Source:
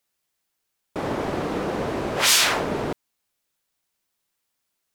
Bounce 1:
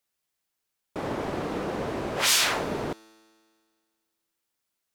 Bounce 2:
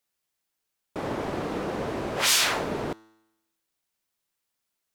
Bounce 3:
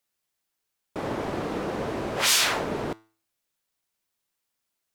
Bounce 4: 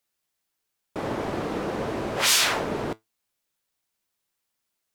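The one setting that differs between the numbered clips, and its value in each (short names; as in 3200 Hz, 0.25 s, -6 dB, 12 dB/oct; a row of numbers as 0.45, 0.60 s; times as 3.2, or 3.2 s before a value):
resonator, decay: 2, 0.93, 0.41, 0.16 s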